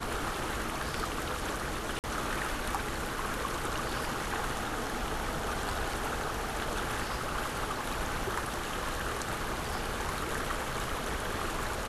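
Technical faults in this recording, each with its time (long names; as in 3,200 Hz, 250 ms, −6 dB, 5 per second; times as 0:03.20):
0:01.99–0:02.04: drop-out 48 ms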